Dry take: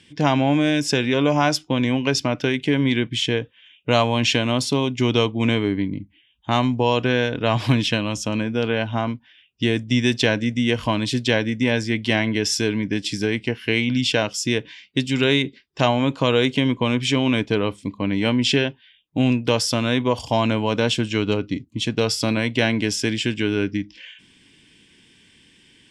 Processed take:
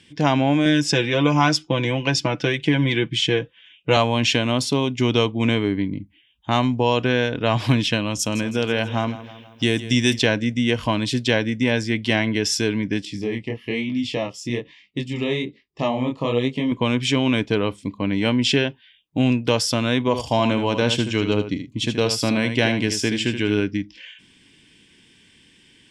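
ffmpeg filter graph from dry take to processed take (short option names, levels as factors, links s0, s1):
-filter_complex "[0:a]asettb=1/sr,asplit=3[s0][s1][s2];[s0]atrim=end=0.654[s3];[s1]atrim=start=0.65:end=3.97,asetpts=PTS-STARTPTS,afade=t=in:d=0.004:c=qsin,afade=t=out:st=3.316:d=0.004:c=qsin,lowpass=8900,aecho=1:1:6:0.65,atrim=end_sample=146412[s4];[s2]atrim=start=3.966[s5];[s3][s4]acrossfade=d=0.004:c1=hsin:c2=qsin[s6];[s6][s5]acrossfade=d=0.004:c1=qsin:c2=hsin,asettb=1/sr,asplit=3[s7][s8][s9];[s7]atrim=end=8.194[s10];[s8]atrim=start=8.19:end=10.19,asetpts=PTS-STARTPTS,afade=t=in:d=0.004:c=qsin,afade=t=out:st=1.996:d=0.004:c=qsin,aemphasis=mode=production:type=50fm,aecho=1:1:161|322|483|644|805:0.178|0.0942|0.05|0.0265|0.014,atrim=end_sample=88200[s11];[s9]atrim=start=10.186[s12];[s10][s11]acrossfade=d=0.004:c1=hsin:c2=qsin[s13];[s13][s12]acrossfade=d=0.004:c1=qsin:c2=hsin,asettb=1/sr,asplit=3[s14][s15][s16];[s14]atrim=end=13.054[s17];[s15]atrim=start=13.05:end=16.72,asetpts=PTS-STARTPTS,afade=t=in:d=0.004:c=qsin,afade=t=out:st=3.666:d=0.004:c=qsin,highshelf=f=2600:g=-9,flanger=delay=19:depth=7.9:speed=1.1,asuperstop=centerf=1500:order=8:qfactor=4.5[s18];[s16]atrim=start=16.716[s19];[s17][s18]acrossfade=d=0.004:c1=hsin:c2=qsin[s20];[s20][s19]acrossfade=d=0.004:c1=qsin:c2=hsin,asettb=1/sr,asplit=3[s21][s22][s23];[s21]atrim=end=20.004[s24];[s22]atrim=start=20:end=23.6,asetpts=PTS-STARTPTS,afade=t=in:d=0.004:c=qsin,afade=t=out:st=3.596:d=0.004:c=qsin,bandreject=f=1400:w=30,aecho=1:1:77:0.376,atrim=end_sample=158760[s25];[s23]atrim=start=23.596[s26];[s24][s25]acrossfade=d=0.004:c1=hsin:c2=qsin[s27];[s27][s26]acrossfade=d=0.004:c1=qsin:c2=hsin"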